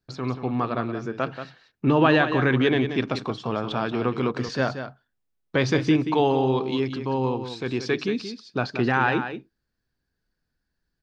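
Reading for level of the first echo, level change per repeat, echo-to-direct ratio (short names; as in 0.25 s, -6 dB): -9.5 dB, no steady repeat, -9.5 dB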